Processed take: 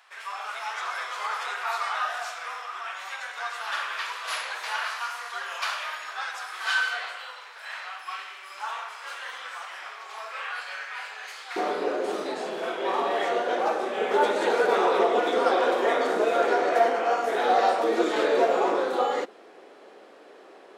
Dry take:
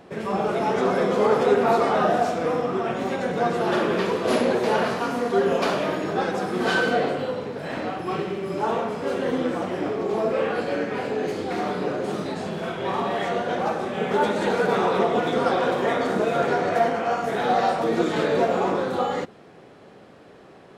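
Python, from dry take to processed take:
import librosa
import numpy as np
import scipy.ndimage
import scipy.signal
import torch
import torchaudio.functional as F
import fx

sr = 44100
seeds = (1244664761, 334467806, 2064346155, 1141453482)

y = fx.highpass(x, sr, hz=fx.steps((0.0, 1100.0), (11.56, 320.0)), slope=24)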